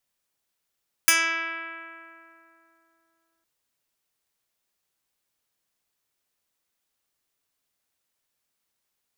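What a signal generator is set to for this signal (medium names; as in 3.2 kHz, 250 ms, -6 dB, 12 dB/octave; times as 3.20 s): plucked string E4, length 2.36 s, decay 3.21 s, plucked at 0.08, medium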